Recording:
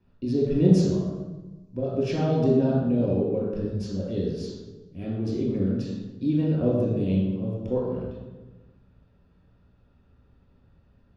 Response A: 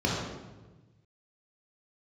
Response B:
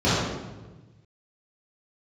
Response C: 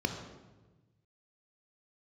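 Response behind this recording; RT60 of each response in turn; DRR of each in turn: A; 1.2, 1.2, 1.2 seconds; −5.0, −13.5, 4.0 decibels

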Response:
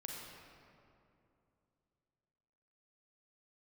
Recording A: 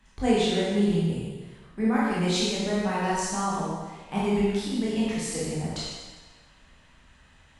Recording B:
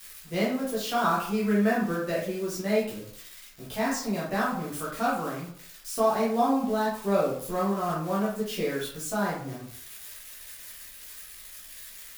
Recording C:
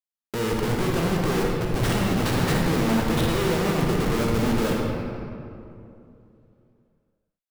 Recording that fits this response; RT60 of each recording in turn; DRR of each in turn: C; 1.4, 0.60, 2.7 seconds; −8.0, −7.5, −2.0 decibels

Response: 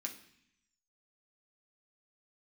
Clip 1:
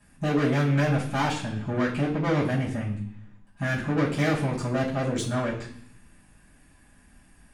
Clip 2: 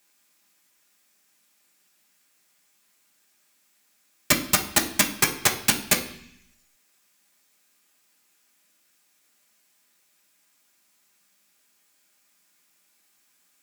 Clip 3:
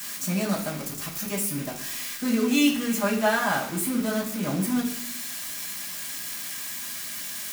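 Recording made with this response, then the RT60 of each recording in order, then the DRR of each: 2; 0.65, 0.65, 0.65 seconds; −12.5, 0.5, −6.0 decibels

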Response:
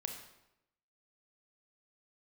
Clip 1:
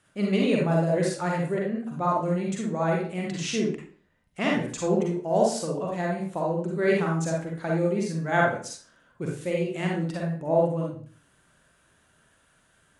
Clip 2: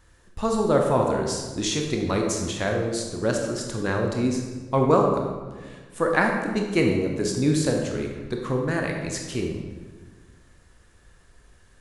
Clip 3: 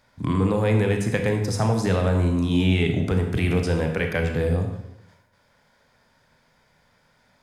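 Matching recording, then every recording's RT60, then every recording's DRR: 3; 0.45, 1.4, 0.85 seconds; −2.5, 1.0, 3.5 decibels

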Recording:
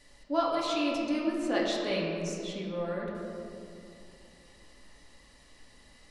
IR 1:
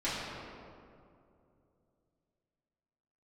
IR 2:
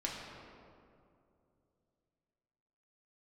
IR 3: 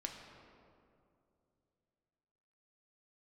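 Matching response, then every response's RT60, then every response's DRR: 2; 2.6, 2.6, 2.6 seconds; −12.5, −4.0, 1.5 decibels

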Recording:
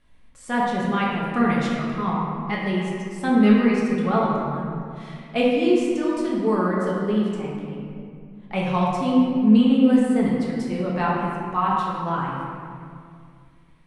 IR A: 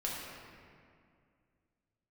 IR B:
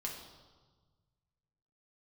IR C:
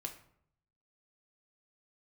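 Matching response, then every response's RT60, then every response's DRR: A; 2.2, 1.4, 0.65 seconds; −5.0, −1.5, 2.5 decibels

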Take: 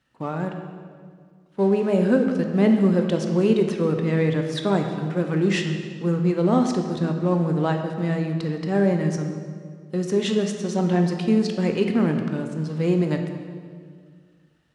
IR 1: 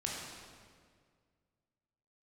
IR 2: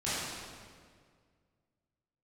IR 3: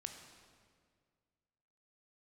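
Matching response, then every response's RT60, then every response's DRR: 3; 1.9, 1.9, 1.9 seconds; −3.5, −12.5, 4.5 decibels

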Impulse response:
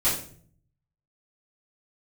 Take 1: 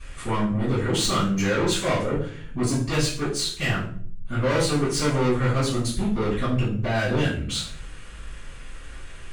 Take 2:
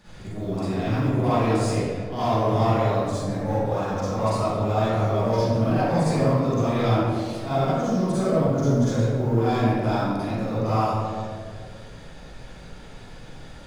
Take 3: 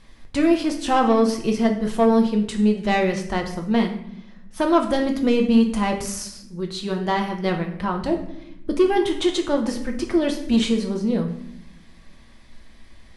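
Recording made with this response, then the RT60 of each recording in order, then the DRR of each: 1; 0.50, 2.1, 0.75 seconds; −13.5, −13.0, 2.5 decibels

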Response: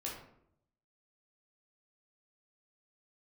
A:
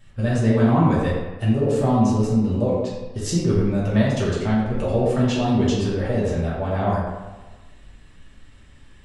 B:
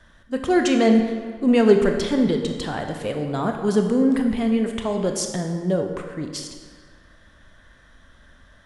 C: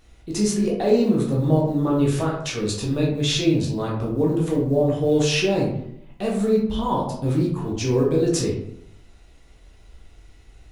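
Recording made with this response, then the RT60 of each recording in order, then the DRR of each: C; 1.3, 1.8, 0.70 seconds; −8.0, 4.0, −4.0 decibels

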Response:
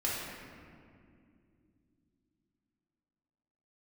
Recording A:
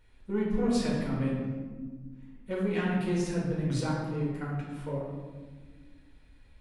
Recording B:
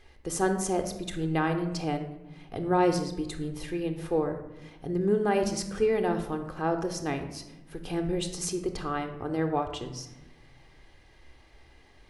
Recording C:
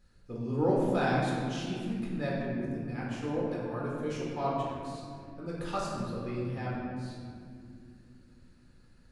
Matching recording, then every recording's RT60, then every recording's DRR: C; non-exponential decay, 1.0 s, non-exponential decay; −6.0, 7.0, −6.5 decibels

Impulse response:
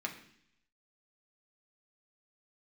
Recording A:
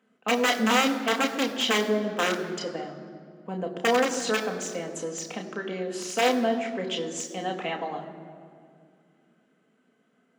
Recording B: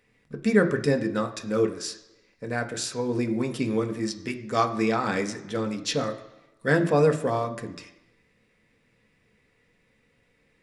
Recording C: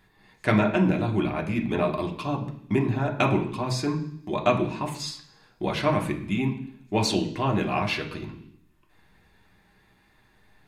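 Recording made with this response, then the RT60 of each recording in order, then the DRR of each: C; 2.2, 1.0, 0.65 seconds; 2.0, 5.0, 1.0 decibels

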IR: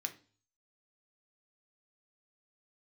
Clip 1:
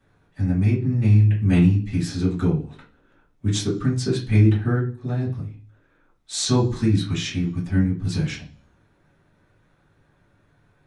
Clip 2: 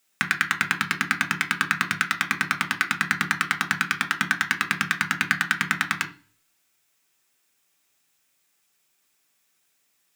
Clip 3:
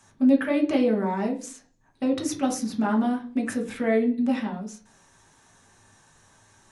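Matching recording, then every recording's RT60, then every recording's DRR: 2; 0.40, 0.40, 0.40 seconds; −8.5, 5.0, 0.5 decibels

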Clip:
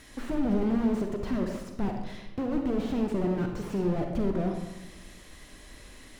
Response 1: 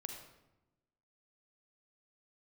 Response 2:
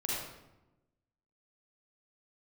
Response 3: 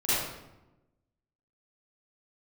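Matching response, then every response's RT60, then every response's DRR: 1; 1.0, 1.0, 1.0 seconds; 3.5, −6.0, −14.5 decibels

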